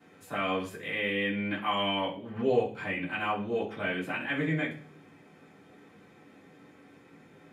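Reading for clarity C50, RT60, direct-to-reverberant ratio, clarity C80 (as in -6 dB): 9.0 dB, 0.50 s, -11.0 dB, 14.5 dB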